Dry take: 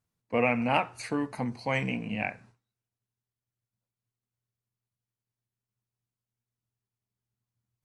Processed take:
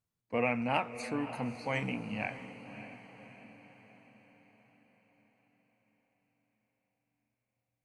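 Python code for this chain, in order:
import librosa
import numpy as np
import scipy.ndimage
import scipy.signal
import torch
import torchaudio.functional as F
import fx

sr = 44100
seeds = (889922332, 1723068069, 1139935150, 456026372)

y = fx.echo_diffused(x, sr, ms=582, feedback_pct=52, wet_db=-12)
y = y * librosa.db_to_amplitude(-5.0)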